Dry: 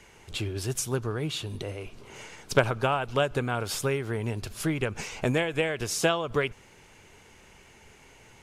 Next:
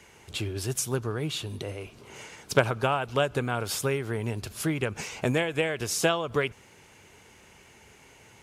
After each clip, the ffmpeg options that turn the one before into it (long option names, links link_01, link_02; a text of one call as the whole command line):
ffmpeg -i in.wav -af "highpass=58,highshelf=frequency=11000:gain=5" out.wav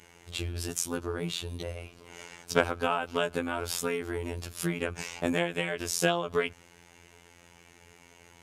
ffmpeg -i in.wav -af "afftfilt=real='hypot(re,im)*cos(PI*b)':imag='0':win_size=2048:overlap=0.75,volume=1.5dB" out.wav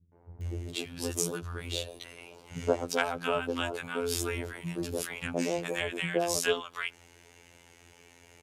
ffmpeg -i in.wav -filter_complex "[0:a]acrossover=split=200|1000[link_01][link_02][link_03];[link_02]adelay=120[link_04];[link_03]adelay=410[link_05];[link_01][link_04][link_05]amix=inputs=3:normalize=0" out.wav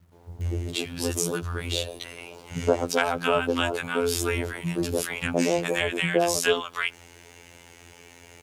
ffmpeg -i in.wav -filter_complex "[0:a]asplit=2[link_01][link_02];[link_02]alimiter=limit=-18dB:level=0:latency=1:release=69,volume=2.5dB[link_03];[link_01][link_03]amix=inputs=2:normalize=0,acrusher=bits=10:mix=0:aa=0.000001" out.wav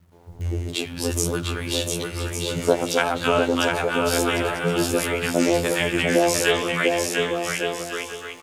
ffmpeg -i in.wav -filter_complex "[0:a]flanger=delay=5.3:depth=8.6:regen=-87:speed=0.25:shape=sinusoidal,asplit=2[link_01][link_02];[link_02]aecho=0:1:700|1155|1451|1643|1768:0.631|0.398|0.251|0.158|0.1[link_03];[link_01][link_03]amix=inputs=2:normalize=0,volume=7dB" out.wav